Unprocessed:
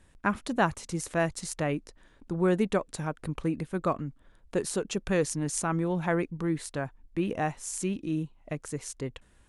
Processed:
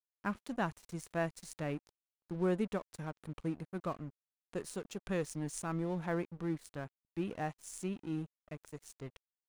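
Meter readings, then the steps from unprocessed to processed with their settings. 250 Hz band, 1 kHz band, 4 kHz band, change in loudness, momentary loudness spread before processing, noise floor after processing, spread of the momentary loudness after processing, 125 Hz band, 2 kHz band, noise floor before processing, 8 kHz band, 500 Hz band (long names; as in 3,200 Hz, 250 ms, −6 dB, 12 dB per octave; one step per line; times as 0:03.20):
−8.0 dB, −10.0 dB, −11.5 dB, −8.5 dB, 9 LU, below −85 dBFS, 12 LU, −8.0 dB, −10.0 dB, −61 dBFS, −13.0 dB, −9.0 dB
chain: harmonic and percussive parts rebalanced percussive −4 dB
dead-zone distortion −45 dBFS
level −6.5 dB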